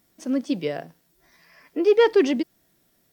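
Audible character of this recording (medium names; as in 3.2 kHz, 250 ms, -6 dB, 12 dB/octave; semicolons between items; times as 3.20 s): noise floor -66 dBFS; spectral tilt -3.5 dB/octave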